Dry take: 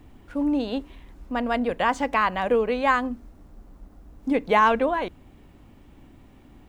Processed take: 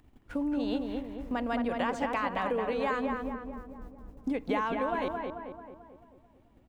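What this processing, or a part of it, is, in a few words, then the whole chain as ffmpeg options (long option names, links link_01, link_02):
upward and downward compression: -filter_complex "[0:a]acompressor=mode=upward:threshold=-43dB:ratio=2.5,acompressor=threshold=-29dB:ratio=6,agate=range=-17dB:threshold=-44dB:ratio=16:detection=peak,asplit=2[link_01][link_02];[link_02]adelay=220,lowpass=frequency=1900:poles=1,volume=-3dB,asplit=2[link_03][link_04];[link_04]adelay=220,lowpass=frequency=1900:poles=1,volume=0.55,asplit=2[link_05][link_06];[link_06]adelay=220,lowpass=frequency=1900:poles=1,volume=0.55,asplit=2[link_07][link_08];[link_08]adelay=220,lowpass=frequency=1900:poles=1,volume=0.55,asplit=2[link_09][link_10];[link_10]adelay=220,lowpass=frequency=1900:poles=1,volume=0.55,asplit=2[link_11][link_12];[link_12]adelay=220,lowpass=frequency=1900:poles=1,volume=0.55,asplit=2[link_13][link_14];[link_14]adelay=220,lowpass=frequency=1900:poles=1,volume=0.55,asplit=2[link_15][link_16];[link_16]adelay=220,lowpass=frequency=1900:poles=1,volume=0.55[link_17];[link_01][link_03][link_05][link_07][link_09][link_11][link_13][link_15][link_17]amix=inputs=9:normalize=0"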